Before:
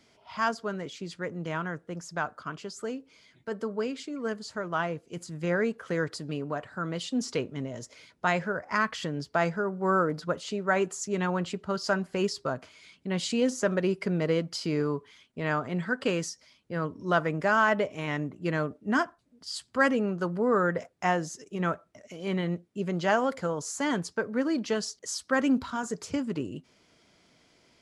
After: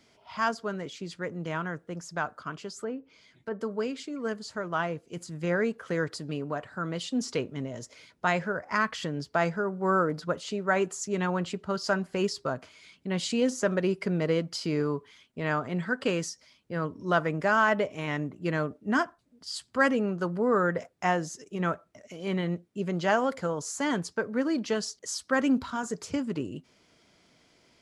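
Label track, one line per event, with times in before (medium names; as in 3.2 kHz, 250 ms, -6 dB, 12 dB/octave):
2.800000	3.610000	low-pass that closes with the level closes to 1.8 kHz, closed at -33 dBFS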